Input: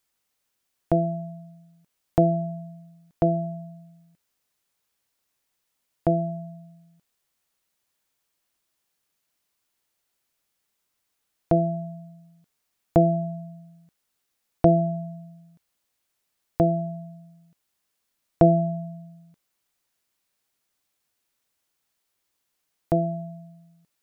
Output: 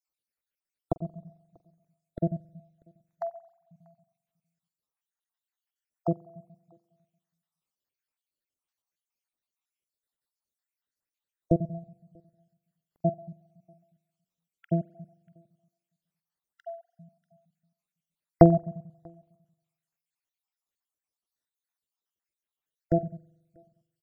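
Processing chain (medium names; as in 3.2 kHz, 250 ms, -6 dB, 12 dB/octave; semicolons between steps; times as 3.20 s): random holes in the spectrogram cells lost 71%; on a send: delay 640 ms -23 dB; on the sum: spring tank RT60 1 s, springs 44 ms, chirp 50 ms, DRR 14 dB; upward expansion 1.5:1, over -39 dBFS; trim +3 dB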